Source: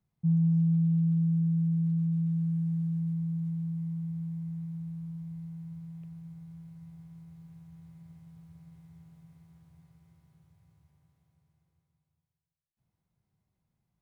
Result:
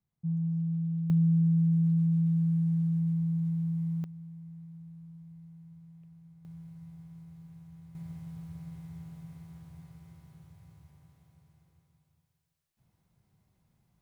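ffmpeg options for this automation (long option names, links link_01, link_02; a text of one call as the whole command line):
ffmpeg -i in.wav -af "asetnsamples=nb_out_samples=441:pad=0,asendcmd='1.1 volume volume 2.5dB;4.04 volume volume -9dB;6.45 volume volume 0.5dB;7.95 volume volume 9dB',volume=-6dB" out.wav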